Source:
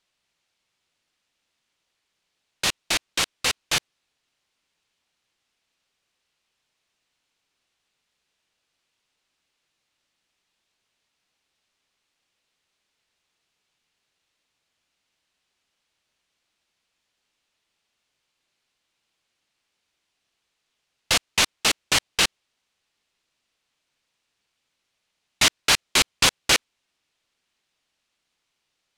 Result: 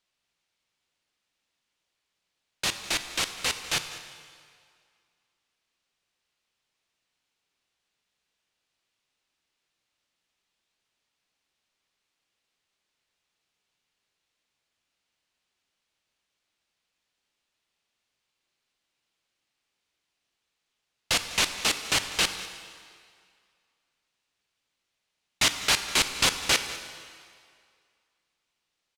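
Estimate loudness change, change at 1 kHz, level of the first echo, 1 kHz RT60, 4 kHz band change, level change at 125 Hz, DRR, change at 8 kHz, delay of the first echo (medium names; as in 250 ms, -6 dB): -4.0 dB, -4.0 dB, -18.0 dB, 2.2 s, -4.0 dB, -4.0 dB, 8.0 dB, -4.0 dB, 199 ms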